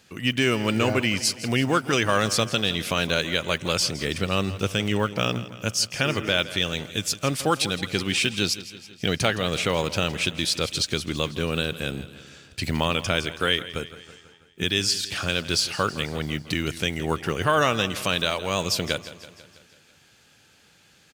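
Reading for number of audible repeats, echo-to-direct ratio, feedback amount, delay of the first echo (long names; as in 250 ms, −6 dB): 5, −13.5 dB, 58%, 164 ms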